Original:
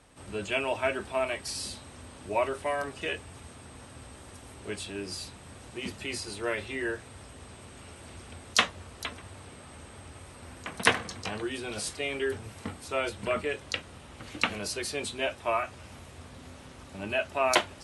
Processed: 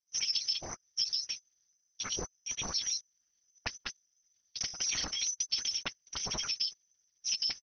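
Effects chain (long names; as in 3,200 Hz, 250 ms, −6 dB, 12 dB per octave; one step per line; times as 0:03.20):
loose part that buzzes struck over −36 dBFS, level −24 dBFS
noise gate −40 dBFS, range −29 dB
noise reduction from a noise print of the clip's start 8 dB
tilt shelving filter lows +3 dB
comb filter 1.3 ms, depth 57%
dynamic equaliser 1,800 Hz, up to −5 dB, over −51 dBFS, Q 6.2
downward compressor 10 to 1, threshold −33 dBFS, peak gain reduction 16.5 dB
pitch shifter −11.5 semitones
rotating-speaker cabinet horn 0.75 Hz, later 6.3 Hz, at 0:11.72
voice inversion scrambler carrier 2,600 Hz
linear-prediction vocoder at 8 kHz whisper
wrong playback speed 33 rpm record played at 78 rpm
level +6 dB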